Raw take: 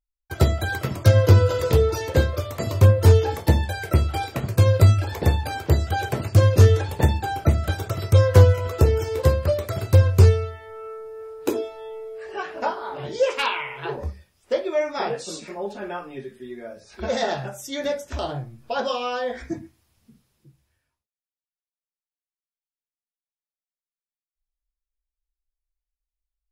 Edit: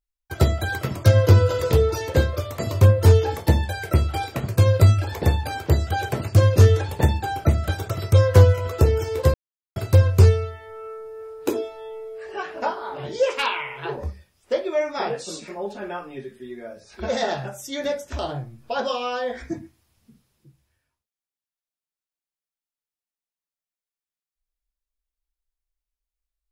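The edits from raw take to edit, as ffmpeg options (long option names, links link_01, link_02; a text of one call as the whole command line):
ffmpeg -i in.wav -filter_complex "[0:a]asplit=3[link_01][link_02][link_03];[link_01]atrim=end=9.34,asetpts=PTS-STARTPTS,afade=type=out:start_time=9.336:duration=0.004:curve=hsin[link_04];[link_02]atrim=start=9.34:end=9.76,asetpts=PTS-STARTPTS,volume=0[link_05];[link_03]atrim=start=9.76,asetpts=PTS-STARTPTS,afade=type=in:duration=0.004:curve=hsin[link_06];[link_04][link_05][link_06]concat=n=3:v=0:a=1" out.wav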